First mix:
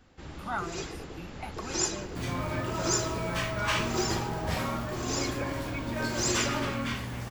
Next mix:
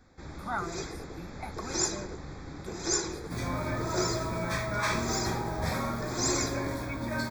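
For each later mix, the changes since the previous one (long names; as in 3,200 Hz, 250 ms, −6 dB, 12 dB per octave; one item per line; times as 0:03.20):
second sound: entry +1.15 s
master: add Butterworth band-reject 2,900 Hz, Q 2.9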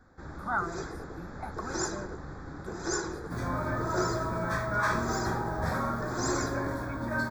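master: add high shelf with overshoot 1,900 Hz −6 dB, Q 3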